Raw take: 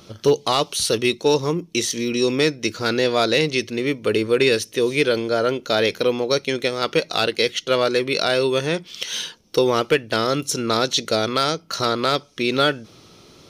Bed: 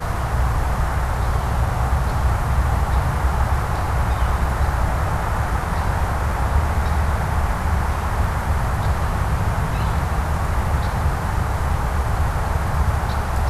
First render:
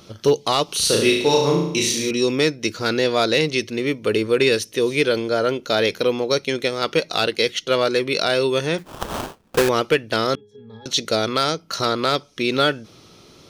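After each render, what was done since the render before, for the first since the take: 0.65–2.11 flutter echo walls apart 6.1 m, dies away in 0.75 s; 8.78–9.69 sample-rate reducer 2100 Hz, jitter 20%; 10.35–10.86 octave resonator G#, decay 0.4 s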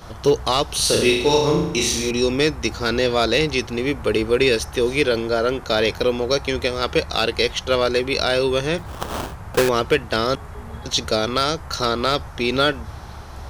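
add bed -15 dB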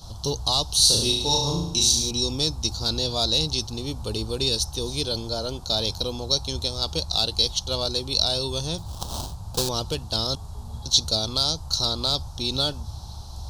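EQ curve 110 Hz 0 dB, 440 Hz -14 dB, 880 Hz -5 dB, 2000 Hz -28 dB, 4000 Hz +5 dB, 7800 Hz +2 dB, 13000 Hz -1 dB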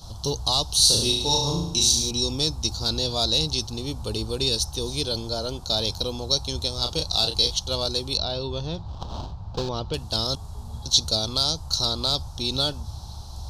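6.75–7.56 doubler 33 ms -6 dB; 8.17–9.94 air absorption 230 m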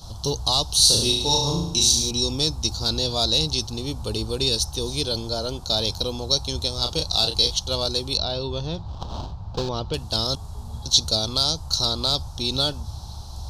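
gain +1.5 dB

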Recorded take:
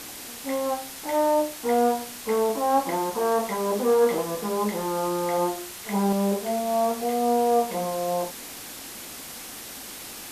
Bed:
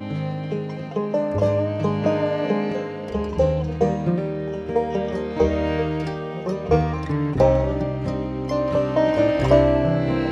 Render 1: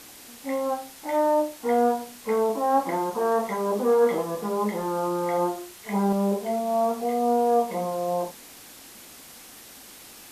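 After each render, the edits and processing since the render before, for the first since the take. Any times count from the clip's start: noise print and reduce 7 dB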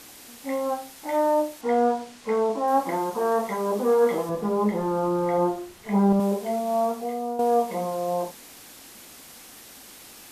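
1.61–2.68 Bessel low-pass 6500 Hz; 4.29–6.2 tilt -2 dB/oct; 6.79–7.39 fade out, to -10 dB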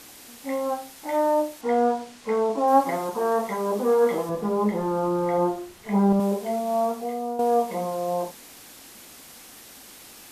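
2.57–3.09 comb 7.3 ms, depth 64%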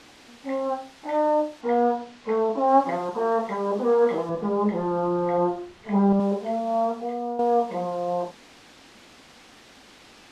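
LPF 4200 Hz 12 dB/oct; dynamic EQ 2200 Hz, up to -4 dB, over -55 dBFS, Q 6.3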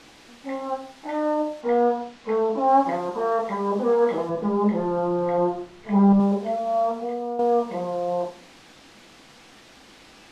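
shoebox room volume 270 m³, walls furnished, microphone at 0.69 m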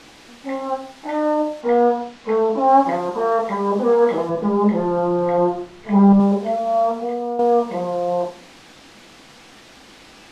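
gain +4.5 dB

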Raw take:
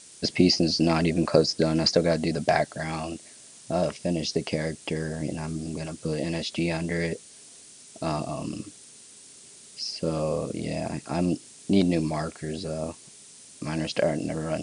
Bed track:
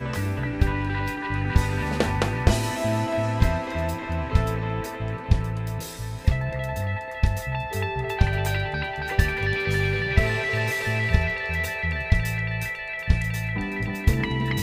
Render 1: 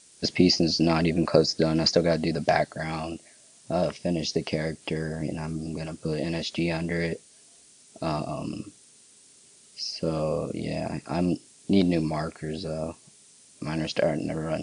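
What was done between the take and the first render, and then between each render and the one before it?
noise print and reduce 6 dB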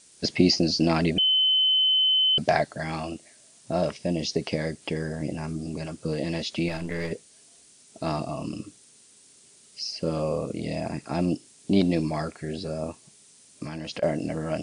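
1.18–2.38 bleep 3050 Hz -18 dBFS; 6.68–7.11 half-wave gain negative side -7 dB; 13.63–14.03 compressor 10:1, threshold -30 dBFS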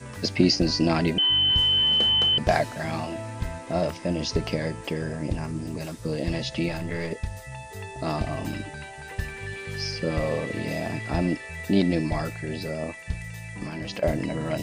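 add bed track -10.5 dB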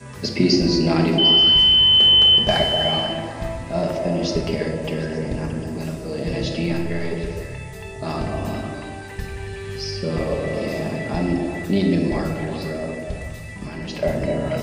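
delay with a stepping band-pass 0.125 s, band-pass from 340 Hz, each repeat 0.7 oct, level -1 dB; shoebox room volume 1000 m³, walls mixed, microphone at 1.3 m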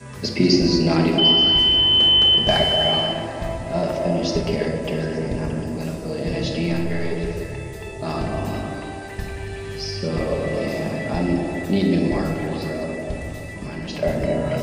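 reverse delay 0.12 s, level -11 dB; band-limited delay 0.292 s, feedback 73%, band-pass 530 Hz, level -13 dB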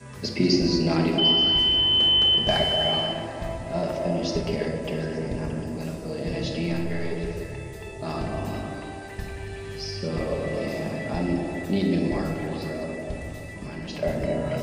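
gain -4.5 dB

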